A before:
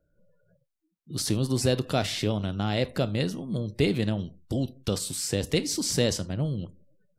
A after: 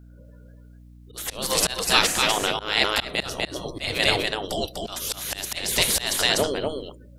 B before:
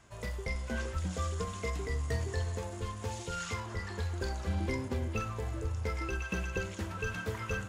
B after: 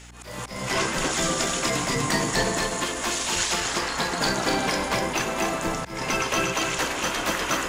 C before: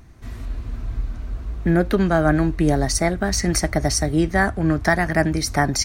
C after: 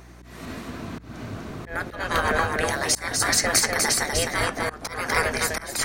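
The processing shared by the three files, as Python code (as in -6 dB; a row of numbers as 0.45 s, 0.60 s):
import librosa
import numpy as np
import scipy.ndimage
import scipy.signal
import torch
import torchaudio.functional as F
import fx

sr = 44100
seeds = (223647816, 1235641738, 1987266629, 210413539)

p1 = fx.spec_gate(x, sr, threshold_db=-15, keep='weak')
p2 = p1 + fx.echo_single(p1, sr, ms=247, db=-4.0, dry=0)
p3 = fx.auto_swell(p2, sr, attack_ms=231.0)
p4 = fx.add_hum(p3, sr, base_hz=60, snr_db=21)
y = p4 * 10.0 ** (-26 / 20.0) / np.sqrt(np.mean(np.square(p4)))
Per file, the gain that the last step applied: +15.5 dB, +19.5 dB, +7.5 dB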